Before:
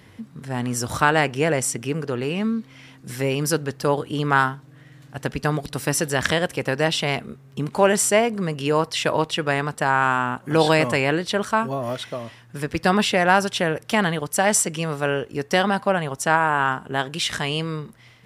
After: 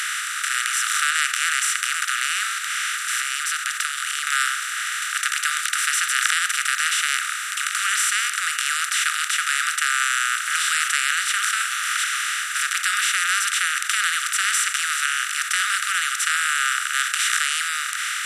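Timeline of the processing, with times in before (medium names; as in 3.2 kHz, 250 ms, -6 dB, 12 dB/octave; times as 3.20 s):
2.58–4.27 s: compression 3:1, threshold -36 dBFS
whole clip: spectral levelling over time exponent 0.2; Chebyshev high-pass 1.2 kHz, order 10; trim -6.5 dB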